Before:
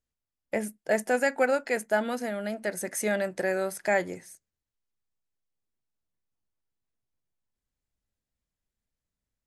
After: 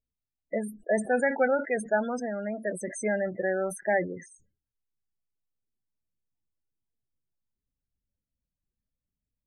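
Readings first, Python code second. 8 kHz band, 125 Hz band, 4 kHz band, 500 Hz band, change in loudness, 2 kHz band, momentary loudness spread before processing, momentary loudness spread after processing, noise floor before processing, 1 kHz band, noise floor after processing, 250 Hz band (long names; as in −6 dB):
−4.5 dB, +1.5 dB, below −15 dB, 0.0 dB, −0.5 dB, −1.0 dB, 8 LU, 9 LU, below −85 dBFS, −0.5 dB, below −85 dBFS, +1.0 dB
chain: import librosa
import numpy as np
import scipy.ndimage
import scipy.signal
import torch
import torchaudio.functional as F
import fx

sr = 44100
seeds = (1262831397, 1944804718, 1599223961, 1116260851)

y = fx.spec_topn(x, sr, count=16)
y = fx.sustainer(y, sr, db_per_s=130.0)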